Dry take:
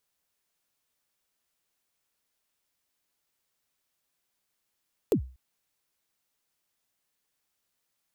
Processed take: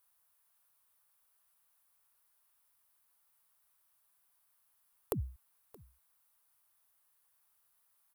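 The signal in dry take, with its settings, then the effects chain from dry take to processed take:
synth kick length 0.24 s, from 500 Hz, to 64 Hz, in 92 ms, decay 0.37 s, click on, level −16.5 dB
drawn EQ curve 110 Hz 0 dB, 270 Hz −14 dB, 1,100 Hz +7 dB, 2,100 Hz −2 dB, 4,500 Hz −3 dB, 7,100 Hz −4 dB, 10,000 Hz +8 dB
downward compressor, threshold −30 dBFS
single-tap delay 624 ms −22.5 dB

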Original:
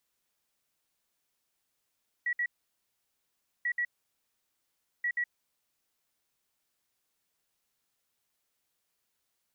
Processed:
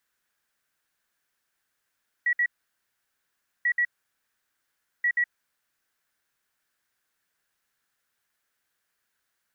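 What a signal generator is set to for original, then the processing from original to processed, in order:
beeps in groups sine 1,930 Hz, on 0.07 s, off 0.06 s, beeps 2, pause 1.19 s, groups 3, −27 dBFS
parametric band 1,600 Hz +12 dB 0.66 octaves

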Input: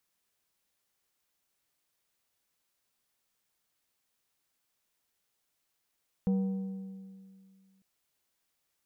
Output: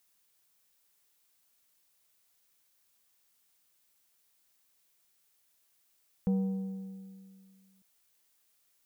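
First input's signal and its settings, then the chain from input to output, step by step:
struck metal plate, lowest mode 192 Hz, decay 2.19 s, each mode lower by 12 dB, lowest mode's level −23.5 dB
background noise blue −72 dBFS

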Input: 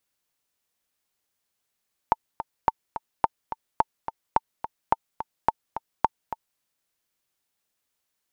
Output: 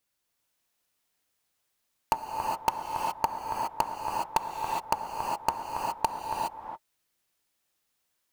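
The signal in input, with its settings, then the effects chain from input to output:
click track 214 BPM, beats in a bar 2, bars 8, 898 Hz, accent 11.5 dB −5 dBFS
flanger 0.66 Hz, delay 0.2 ms, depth 9.6 ms, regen −67%
in parallel at −6.5 dB: wrap-around overflow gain 17 dB
on the sum: reverb whose tail is shaped and stops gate 440 ms rising, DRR −0.5 dB

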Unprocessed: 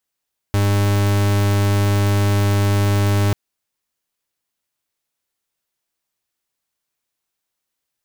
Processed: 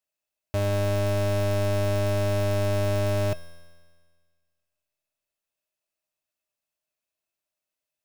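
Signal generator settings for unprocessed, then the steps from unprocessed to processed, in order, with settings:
pulse wave 101 Hz, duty 42% −16 dBFS 2.79 s
tuned comb filter 85 Hz, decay 1.7 s, harmonics all, mix 70%
hollow resonant body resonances 620/2,600 Hz, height 16 dB, ringing for 75 ms

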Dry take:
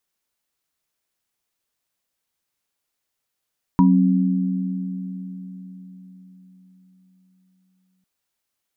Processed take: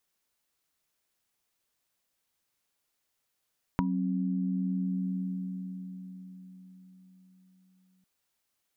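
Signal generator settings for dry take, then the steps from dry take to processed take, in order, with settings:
inharmonic partials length 4.25 s, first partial 186 Hz, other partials 268/966 Hz, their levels −2/−5 dB, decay 4.74 s, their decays 3.46/0.22 s, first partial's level −12 dB
downward compressor 10 to 1, threshold −27 dBFS

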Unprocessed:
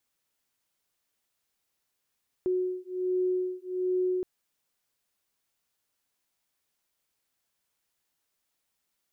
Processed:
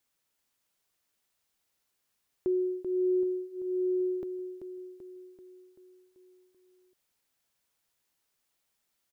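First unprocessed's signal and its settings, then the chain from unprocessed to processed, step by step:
two tones that beat 366 Hz, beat 1.3 Hz, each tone −29.5 dBFS 1.77 s
repeating echo 386 ms, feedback 56%, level −8 dB

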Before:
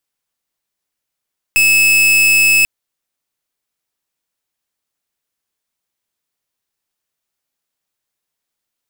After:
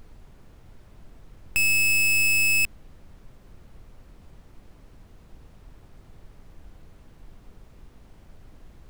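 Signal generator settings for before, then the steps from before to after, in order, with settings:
pulse wave 2,600 Hz, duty 42% −10.5 dBFS 1.09 s
low-shelf EQ 140 Hz +12 dB
brickwall limiter −17 dBFS
background noise brown −46 dBFS

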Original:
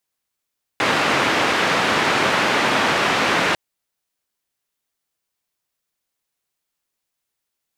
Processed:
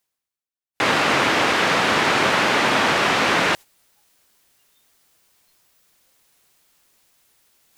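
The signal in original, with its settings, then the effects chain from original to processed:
band-limited noise 160–2,100 Hz, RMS −18.5 dBFS 2.75 s
noise reduction from a noise print of the clip's start 18 dB
reversed playback
upward compression, threshold −33 dBFS
reversed playback

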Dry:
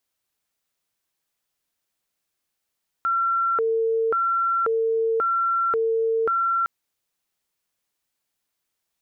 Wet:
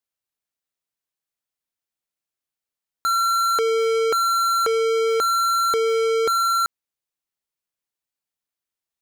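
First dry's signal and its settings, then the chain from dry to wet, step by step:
siren hi-lo 451–1,360 Hz 0.93 per second sine −19 dBFS 3.61 s
leveller curve on the samples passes 5

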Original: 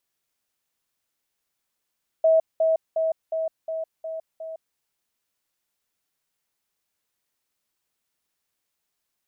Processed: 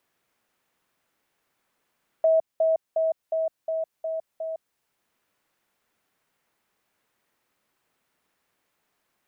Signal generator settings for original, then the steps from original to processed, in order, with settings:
level staircase 645 Hz −14 dBFS, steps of −3 dB, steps 7, 0.16 s 0.20 s
multiband upward and downward compressor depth 40%

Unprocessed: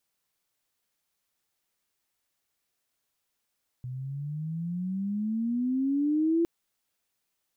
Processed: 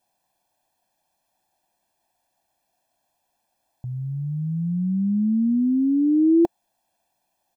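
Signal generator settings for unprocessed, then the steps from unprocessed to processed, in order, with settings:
pitch glide with a swell sine, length 2.61 s, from 124 Hz, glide +17.5 semitones, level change +12.5 dB, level −21 dB
flat-topped bell 580 Hz +10 dB
comb filter 1.2 ms, depth 95%
hollow resonant body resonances 220/340/700 Hz, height 6 dB, ringing for 20 ms

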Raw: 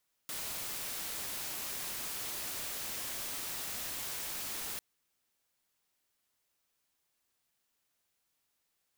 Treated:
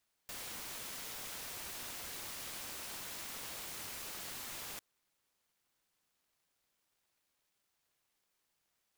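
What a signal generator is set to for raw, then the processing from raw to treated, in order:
noise white, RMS −39.5 dBFS 4.50 s
high-pass filter 840 Hz 24 dB per octave
soft clipping −39 dBFS
short delay modulated by noise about 1,200 Hz, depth 0.18 ms

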